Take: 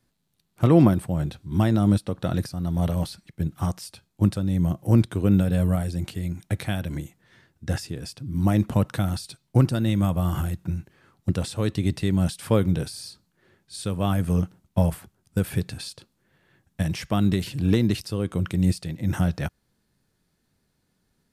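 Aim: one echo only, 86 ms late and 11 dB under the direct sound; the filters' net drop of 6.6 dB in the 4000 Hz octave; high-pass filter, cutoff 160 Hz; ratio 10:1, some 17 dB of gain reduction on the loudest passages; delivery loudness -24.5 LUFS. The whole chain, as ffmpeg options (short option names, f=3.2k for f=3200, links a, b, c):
-af "highpass=160,equalizer=f=4k:t=o:g=-8.5,acompressor=threshold=-30dB:ratio=10,aecho=1:1:86:0.282,volume=12dB"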